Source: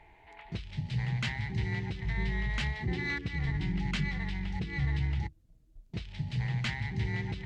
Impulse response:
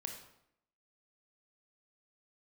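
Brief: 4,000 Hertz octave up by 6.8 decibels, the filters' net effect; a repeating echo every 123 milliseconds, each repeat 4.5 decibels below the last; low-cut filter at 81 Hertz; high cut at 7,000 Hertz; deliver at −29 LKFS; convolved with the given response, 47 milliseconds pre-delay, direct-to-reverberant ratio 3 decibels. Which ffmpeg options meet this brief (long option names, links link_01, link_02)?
-filter_complex "[0:a]highpass=81,lowpass=7000,equalizer=frequency=4000:width_type=o:gain=9,aecho=1:1:123|246|369|492|615|738|861|984|1107:0.596|0.357|0.214|0.129|0.0772|0.0463|0.0278|0.0167|0.01,asplit=2[link_01][link_02];[1:a]atrim=start_sample=2205,adelay=47[link_03];[link_02][link_03]afir=irnorm=-1:irlink=0,volume=-1dB[link_04];[link_01][link_04]amix=inputs=2:normalize=0,volume=1dB"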